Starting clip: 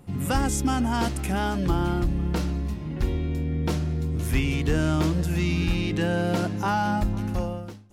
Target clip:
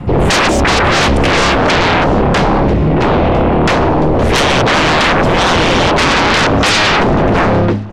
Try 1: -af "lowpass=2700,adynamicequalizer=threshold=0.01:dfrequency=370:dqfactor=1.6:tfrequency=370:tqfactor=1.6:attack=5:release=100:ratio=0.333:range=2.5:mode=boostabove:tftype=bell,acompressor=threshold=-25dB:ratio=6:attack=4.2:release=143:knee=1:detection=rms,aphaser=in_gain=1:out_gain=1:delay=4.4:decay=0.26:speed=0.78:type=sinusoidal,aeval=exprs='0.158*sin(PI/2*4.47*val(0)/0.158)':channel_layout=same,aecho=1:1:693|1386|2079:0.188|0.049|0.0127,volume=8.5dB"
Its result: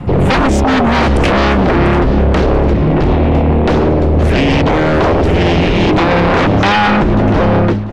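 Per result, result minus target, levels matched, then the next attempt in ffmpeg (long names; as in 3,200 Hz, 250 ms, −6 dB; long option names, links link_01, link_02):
downward compressor: peak gain reduction +10 dB; echo-to-direct +7.5 dB
-af "lowpass=2700,adynamicequalizer=threshold=0.01:dfrequency=370:dqfactor=1.6:tfrequency=370:tqfactor=1.6:attack=5:release=100:ratio=0.333:range=2.5:mode=boostabove:tftype=bell,aphaser=in_gain=1:out_gain=1:delay=4.4:decay=0.26:speed=0.78:type=sinusoidal,aeval=exprs='0.158*sin(PI/2*4.47*val(0)/0.158)':channel_layout=same,aecho=1:1:693|1386|2079:0.188|0.049|0.0127,volume=8.5dB"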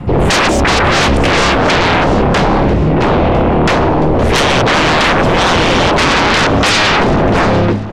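echo-to-direct +7.5 dB
-af "lowpass=2700,adynamicequalizer=threshold=0.01:dfrequency=370:dqfactor=1.6:tfrequency=370:tqfactor=1.6:attack=5:release=100:ratio=0.333:range=2.5:mode=boostabove:tftype=bell,aphaser=in_gain=1:out_gain=1:delay=4.4:decay=0.26:speed=0.78:type=sinusoidal,aeval=exprs='0.158*sin(PI/2*4.47*val(0)/0.158)':channel_layout=same,aecho=1:1:693|1386:0.0794|0.0207,volume=8.5dB"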